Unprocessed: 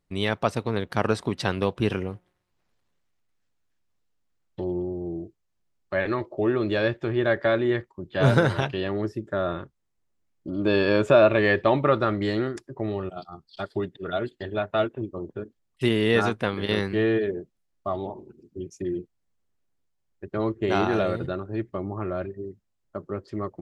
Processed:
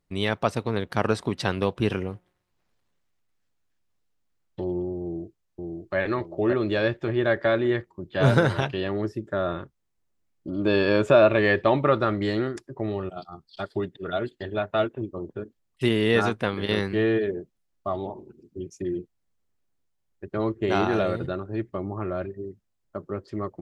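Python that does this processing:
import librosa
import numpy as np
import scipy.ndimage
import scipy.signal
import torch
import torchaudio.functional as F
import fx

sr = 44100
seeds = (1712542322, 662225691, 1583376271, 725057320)

y = fx.echo_throw(x, sr, start_s=5.01, length_s=0.95, ms=570, feedback_pct=35, wet_db=-2.5)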